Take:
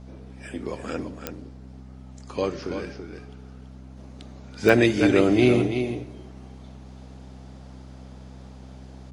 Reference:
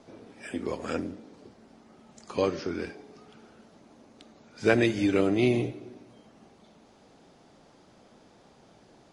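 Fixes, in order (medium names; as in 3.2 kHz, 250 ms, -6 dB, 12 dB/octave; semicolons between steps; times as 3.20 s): de-click; de-hum 64.6 Hz, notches 4; inverse comb 332 ms -8 dB; trim 0 dB, from 3.97 s -5 dB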